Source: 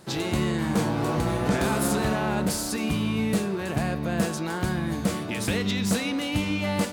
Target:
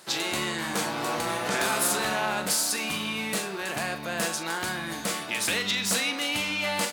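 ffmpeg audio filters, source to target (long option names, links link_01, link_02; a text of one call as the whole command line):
ffmpeg -i in.wav -filter_complex "[0:a]highpass=frequency=1400:poles=1,asplit=2[link_01][link_02];[link_02]adelay=42,volume=-10.5dB[link_03];[link_01][link_03]amix=inputs=2:normalize=0,volume=5.5dB" out.wav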